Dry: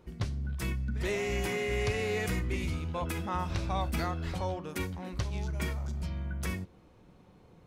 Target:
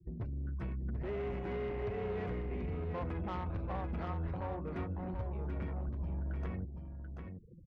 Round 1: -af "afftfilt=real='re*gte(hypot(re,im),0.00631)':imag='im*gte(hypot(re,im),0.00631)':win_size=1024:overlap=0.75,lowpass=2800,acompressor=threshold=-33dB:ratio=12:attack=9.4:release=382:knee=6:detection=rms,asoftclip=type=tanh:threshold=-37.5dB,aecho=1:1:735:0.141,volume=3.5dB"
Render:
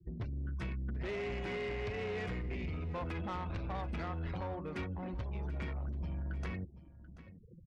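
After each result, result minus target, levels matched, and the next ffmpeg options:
echo-to-direct −10.5 dB; 2,000 Hz band +6.0 dB
-af "afftfilt=real='re*gte(hypot(re,im),0.00631)':imag='im*gte(hypot(re,im),0.00631)':win_size=1024:overlap=0.75,lowpass=2800,acompressor=threshold=-33dB:ratio=12:attack=9.4:release=382:knee=6:detection=rms,asoftclip=type=tanh:threshold=-37.5dB,aecho=1:1:735:0.473,volume=3.5dB"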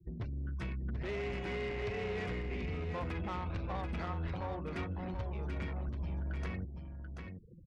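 2,000 Hz band +6.5 dB
-af "afftfilt=real='re*gte(hypot(re,im),0.00631)':imag='im*gte(hypot(re,im),0.00631)':win_size=1024:overlap=0.75,lowpass=1200,acompressor=threshold=-33dB:ratio=12:attack=9.4:release=382:knee=6:detection=rms,asoftclip=type=tanh:threshold=-37.5dB,aecho=1:1:735:0.473,volume=3.5dB"

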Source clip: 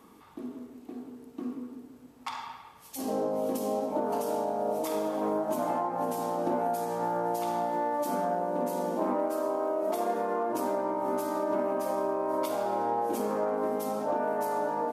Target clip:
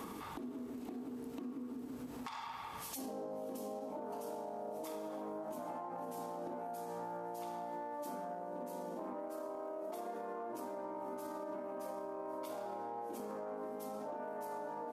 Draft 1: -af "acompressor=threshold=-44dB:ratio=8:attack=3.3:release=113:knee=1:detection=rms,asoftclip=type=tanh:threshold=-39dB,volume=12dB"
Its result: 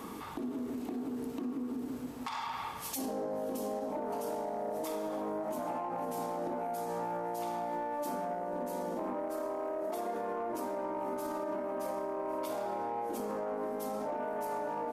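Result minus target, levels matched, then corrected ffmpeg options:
downward compressor: peak gain reduction −8 dB
-af "acompressor=threshold=-53dB:ratio=8:attack=3.3:release=113:knee=1:detection=rms,asoftclip=type=tanh:threshold=-39dB,volume=12dB"

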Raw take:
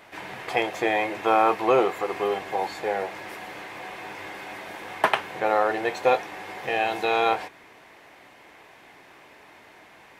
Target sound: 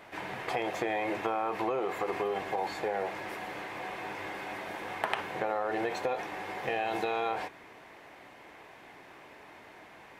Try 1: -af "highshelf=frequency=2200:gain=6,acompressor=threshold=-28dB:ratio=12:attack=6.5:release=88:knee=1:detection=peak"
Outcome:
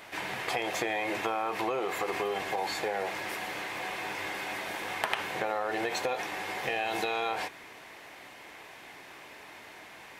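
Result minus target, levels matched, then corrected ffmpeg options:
4,000 Hz band +5.5 dB
-af "highshelf=frequency=2200:gain=-5,acompressor=threshold=-28dB:ratio=12:attack=6.5:release=88:knee=1:detection=peak"

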